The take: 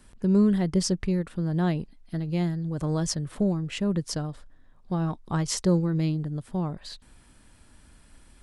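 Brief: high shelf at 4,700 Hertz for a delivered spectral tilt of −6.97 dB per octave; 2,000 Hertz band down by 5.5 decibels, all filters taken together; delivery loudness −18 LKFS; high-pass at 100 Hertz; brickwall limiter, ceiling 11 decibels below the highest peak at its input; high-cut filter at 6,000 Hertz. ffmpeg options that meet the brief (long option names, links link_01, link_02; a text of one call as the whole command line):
ffmpeg -i in.wav -af "highpass=100,lowpass=6000,equalizer=frequency=2000:width_type=o:gain=-6,highshelf=frequency=4700:gain=-6.5,volume=14.5dB,alimiter=limit=-9.5dB:level=0:latency=1" out.wav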